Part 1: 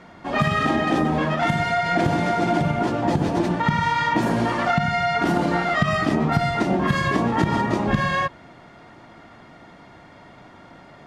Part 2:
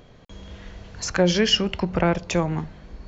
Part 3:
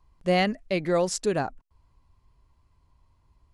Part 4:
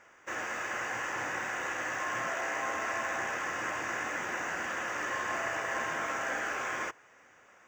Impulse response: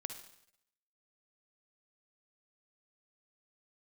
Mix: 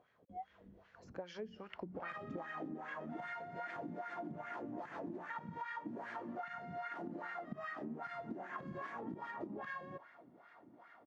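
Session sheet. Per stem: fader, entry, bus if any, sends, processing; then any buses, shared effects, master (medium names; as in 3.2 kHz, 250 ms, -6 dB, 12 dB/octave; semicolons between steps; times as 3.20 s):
-8.5 dB, 1.70 s, send -16 dB, none
-10.5 dB, 0.00 s, no send, peaking EQ 100 Hz +7 dB 2.6 oct
-14.0 dB, 0.00 s, no send, high-pass 740 Hz 24 dB/octave; spectral contrast expander 4:1; auto duck -15 dB, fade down 1.95 s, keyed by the second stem
+0.5 dB, 2.10 s, no send, compression, threshold -42 dBFS, peak gain reduction 11.5 dB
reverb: on, RT60 0.75 s, pre-delay 48 ms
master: treble shelf 5.7 kHz +5 dB; wah-wah 2.5 Hz 230–1800 Hz, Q 2.7; compression 6:1, threshold -42 dBFS, peak gain reduction 13.5 dB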